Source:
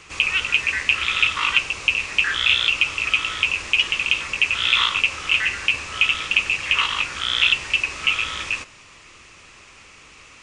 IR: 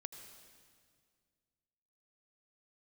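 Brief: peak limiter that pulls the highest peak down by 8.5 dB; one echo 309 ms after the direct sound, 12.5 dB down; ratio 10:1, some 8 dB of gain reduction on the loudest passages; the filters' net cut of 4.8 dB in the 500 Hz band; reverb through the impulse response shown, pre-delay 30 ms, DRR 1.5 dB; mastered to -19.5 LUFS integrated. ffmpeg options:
-filter_complex "[0:a]equalizer=f=500:t=o:g=-6,acompressor=threshold=0.0891:ratio=10,alimiter=limit=0.188:level=0:latency=1,aecho=1:1:309:0.237,asplit=2[s0][s1];[1:a]atrim=start_sample=2205,adelay=30[s2];[s1][s2]afir=irnorm=-1:irlink=0,volume=1.33[s3];[s0][s3]amix=inputs=2:normalize=0,volume=1.68"

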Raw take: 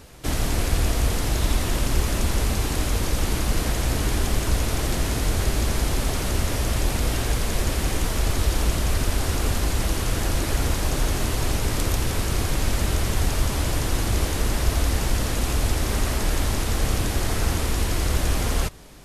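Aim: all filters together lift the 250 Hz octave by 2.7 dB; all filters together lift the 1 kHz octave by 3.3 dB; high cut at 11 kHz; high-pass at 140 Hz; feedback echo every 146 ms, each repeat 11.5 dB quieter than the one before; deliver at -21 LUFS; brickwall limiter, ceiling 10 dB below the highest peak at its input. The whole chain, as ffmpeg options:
-af "highpass=140,lowpass=11000,equalizer=f=250:t=o:g=4,equalizer=f=1000:t=o:g=4,alimiter=limit=0.075:level=0:latency=1,aecho=1:1:146|292|438:0.266|0.0718|0.0194,volume=3.16"

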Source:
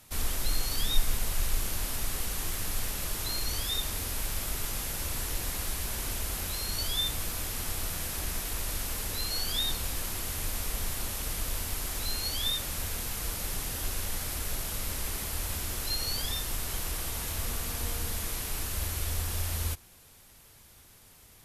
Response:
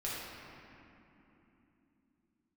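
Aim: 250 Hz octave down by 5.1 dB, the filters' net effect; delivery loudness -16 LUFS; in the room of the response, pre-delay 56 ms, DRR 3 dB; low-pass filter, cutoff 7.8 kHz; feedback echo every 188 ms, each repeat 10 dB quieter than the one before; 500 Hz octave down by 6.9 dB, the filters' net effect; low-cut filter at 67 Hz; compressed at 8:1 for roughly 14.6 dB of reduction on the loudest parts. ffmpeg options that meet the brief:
-filter_complex "[0:a]highpass=67,lowpass=7800,equalizer=f=250:t=o:g=-5,equalizer=f=500:t=o:g=-7.5,acompressor=threshold=0.00708:ratio=8,aecho=1:1:188|376|564|752:0.316|0.101|0.0324|0.0104,asplit=2[s0][s1];[1:a]atrim=start_sample=2205,adelay=56[s2];[s1][s2]afir=irnorm=-1:irlink=0,volume=0.447[s3];[s0][s3]amix=inputs=2:normalize=0,volume=22.4"

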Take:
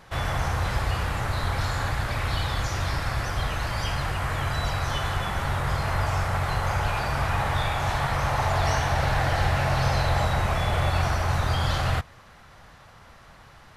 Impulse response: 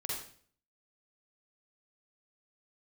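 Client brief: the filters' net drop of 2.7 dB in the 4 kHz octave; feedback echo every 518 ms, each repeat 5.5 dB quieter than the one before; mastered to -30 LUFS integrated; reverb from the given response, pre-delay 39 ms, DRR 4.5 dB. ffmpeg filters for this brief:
-filter_complex "[0:a]equalizer=f=4000:t=o:g=-3.5,aecho=1:1:518|1036|1554|2072|2590|3108|3626:0.531|0.281|0.149|0.079|0.0419|0.0222|0.0118,asplit=2[s0][s1];[1:a]atrim=start_sample=2205,adelay=39[s2];[s1][s2]afir=irnorm=-1:irlink=0,volume=0.473[s3];[s0][s3]amix=inputs=2:normalize=0,volume=0.531"

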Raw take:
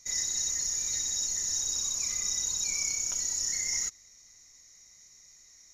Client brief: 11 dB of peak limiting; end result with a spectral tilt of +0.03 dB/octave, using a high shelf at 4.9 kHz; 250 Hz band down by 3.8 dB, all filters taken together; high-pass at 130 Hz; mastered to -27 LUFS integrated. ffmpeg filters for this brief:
-af "highpass=130,equalizer=f=250:t=o:g=-4.5,highshelf=f=4900:g=-4.5,volume=3.35,alimiter=limit=0.0841:level=0:latency=1"

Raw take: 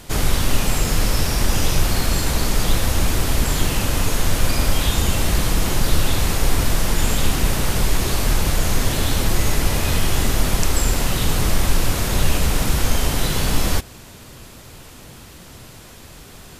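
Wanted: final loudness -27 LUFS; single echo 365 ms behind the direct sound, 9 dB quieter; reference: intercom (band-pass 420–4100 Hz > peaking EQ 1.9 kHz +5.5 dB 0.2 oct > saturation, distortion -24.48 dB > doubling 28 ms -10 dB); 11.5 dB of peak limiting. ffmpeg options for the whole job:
-filter_complex "[0:a]alimiter=limit=0.211:level=0:latency=1,highpass=420,lowpass=4100,equalizer=f=1900:t=o:w=0.2:g=5.5,aecho=1:1:365:0.355,asoftclip=threshold=0.1,asplit=2[s0][s1];[s1]adelay=28,volume=0.316[s2];[s0][s2]amix=inputs=2:normalize=0,volume=1.41"

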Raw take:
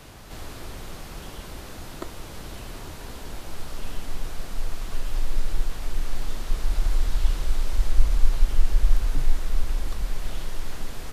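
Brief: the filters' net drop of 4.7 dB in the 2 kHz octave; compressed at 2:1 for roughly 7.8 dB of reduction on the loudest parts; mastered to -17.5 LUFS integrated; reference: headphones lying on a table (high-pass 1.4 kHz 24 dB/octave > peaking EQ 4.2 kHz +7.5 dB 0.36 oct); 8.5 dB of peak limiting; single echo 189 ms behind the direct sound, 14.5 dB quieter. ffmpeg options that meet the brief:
-af "equalizer=f=2000:t=o:g=-5.5,acompressor=threshold=0.0794:ratio=2,alimiter=limit=0.1:level=0:latency=1,highpass=f=1400:w=0.5412,highpass=f=1400:w=1.3066,equalizer=f=4200:t=o:w=0.36:g=7.5,aecho=1:1:189:0.188,volume=22.4"

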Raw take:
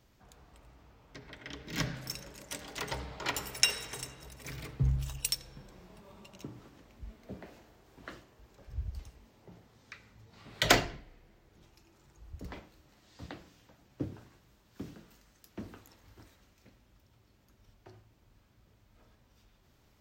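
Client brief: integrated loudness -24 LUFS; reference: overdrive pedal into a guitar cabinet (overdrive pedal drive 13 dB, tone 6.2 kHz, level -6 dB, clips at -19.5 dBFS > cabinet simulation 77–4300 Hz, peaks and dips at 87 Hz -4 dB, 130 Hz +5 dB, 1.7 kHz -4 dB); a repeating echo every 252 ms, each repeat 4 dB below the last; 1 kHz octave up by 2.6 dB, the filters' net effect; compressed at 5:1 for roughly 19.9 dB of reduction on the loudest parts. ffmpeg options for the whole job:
-filter_complex "[0:a]equalizer=f=1000:t=o:g=4,acompressor=threshold=0.00631:ratio=5,aecho=1:1:252|504|756|1008|1260|1512|1764|2016|2268:0.631|0.398|0.25|0.158|0.0994|0.0626|0.0394|0.0249|0.0157,asplit=2[s0][s1];[s1]highpass=f=720:p=1,volume=4.47,asoftclip=type=tanh:threshold=0.106[s2];[s0][s2]amix=inputs=2:normalize=0,lowpass=f=6200:p=1,volume=0.501,highpass=77,equalizer=f=87:t=q:w=4:g=-4,equalizer=f=130:t=q:w=4:g=5,equalizer=f=1700:t=q:w=4:g=-4,lowpass=f=4300:w=0.5412,lowpass=f=4300:w=1.3066,volume=12.6"

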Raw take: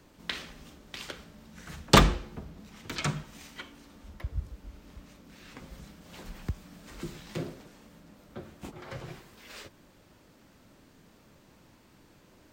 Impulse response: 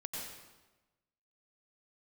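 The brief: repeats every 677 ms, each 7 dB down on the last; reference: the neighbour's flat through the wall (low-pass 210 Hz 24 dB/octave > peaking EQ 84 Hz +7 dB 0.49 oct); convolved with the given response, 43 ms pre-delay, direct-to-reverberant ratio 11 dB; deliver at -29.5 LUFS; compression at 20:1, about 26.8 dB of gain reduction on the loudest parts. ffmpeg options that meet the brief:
-filter_complex "[0:a]acompressor=threshold=0.0112:ratio=20,aecho=1:1:677|1354|2031|2708|3385:0.447|0.201|0.0905|0.0407|0.0183,asplit=2[s0][s1];[1:a]atrim=start_sample=2205,adelay=43[s2];[s1][s2]afir=irnorm=-1:irlink=0,volume=0.282[s3];[s0][s3]amix=inputs=2:normalize=0,lowpass=f=210:w=0.5412,lowpass=f=210:w=1.3066,equalizer=f=84:t=o:w=0.49:g=7,volume=11.2"

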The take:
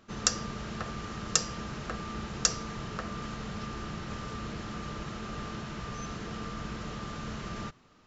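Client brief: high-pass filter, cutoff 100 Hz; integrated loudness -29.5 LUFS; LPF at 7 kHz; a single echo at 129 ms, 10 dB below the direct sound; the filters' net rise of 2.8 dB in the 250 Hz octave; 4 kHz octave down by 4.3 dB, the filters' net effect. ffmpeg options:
-af "highpass=100,lowpass=7000,equalizer=f=250:t=o:g=4,equalizer=f=4000:t=o:g=-5,aecho=1:1:129:0.316,volume=2.11"

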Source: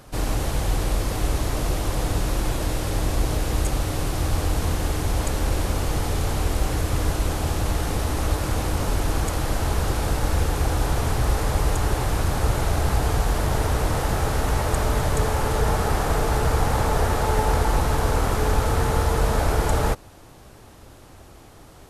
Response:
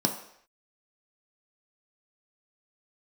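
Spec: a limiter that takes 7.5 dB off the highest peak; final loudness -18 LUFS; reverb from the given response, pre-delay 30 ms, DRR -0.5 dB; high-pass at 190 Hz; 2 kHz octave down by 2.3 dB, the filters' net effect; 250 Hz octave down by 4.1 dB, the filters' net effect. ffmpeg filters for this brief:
-filter_complex "[0:a]highpass=190,equalizer=f=250:t=o:g=-3.5,equalizer=f=2000:t=o:g=-3,alimiter=limit=0.0944:level=0:latency=1,asplit=2[s0][s1];[1:a]atrim=start_sample=2205,adelay=30[s2];[s1][s2]afir=irnorm=-1:irlink=0,volume=0.376[s3];[s0][s3]amix=inputs=2:normalize=0,volume=2.24"

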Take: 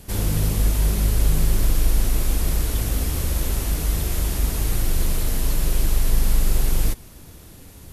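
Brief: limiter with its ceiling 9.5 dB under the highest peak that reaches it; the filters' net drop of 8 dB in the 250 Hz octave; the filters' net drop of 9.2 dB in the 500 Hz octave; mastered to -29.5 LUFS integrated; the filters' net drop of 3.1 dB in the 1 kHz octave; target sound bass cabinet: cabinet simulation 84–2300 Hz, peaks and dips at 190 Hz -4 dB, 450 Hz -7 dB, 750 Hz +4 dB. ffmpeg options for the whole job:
-af "equalizer=f=250:t=o:g=-8.5,equalizer=f=500:t=o:g=-5.5,equalizer=f=1000:t=o:g=-3.5,alimiter=limit=0.15:level=0:latency=1,highpass=f=84:w=0.5412,highpass=f=84:w=1.3066,equalizer=f=190:t=q:w=4:g=-4,equalizer=f=450:t=q:w=4:g=-7,equalizer=f=750:t=q:w=4:g=4,lowpass=f=2300:w=0.5412,lowpass=f=2300:w=1.3066,volume=2.51"

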